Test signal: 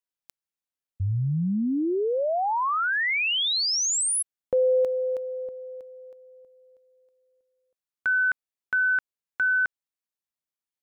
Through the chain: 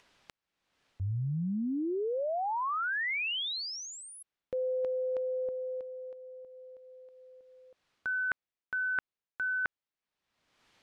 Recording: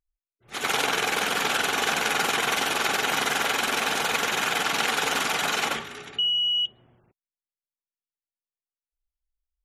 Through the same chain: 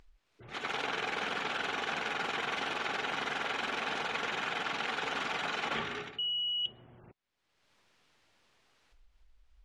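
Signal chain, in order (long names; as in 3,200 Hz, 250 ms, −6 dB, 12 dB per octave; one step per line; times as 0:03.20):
reversed playback
downward compressor 8 to 1, threshold −33 dBFS
reversed playback
low-pass filter 3,700 Hz 12 dB per octave
upward compression, threshold −46 dBFS
level +2 dB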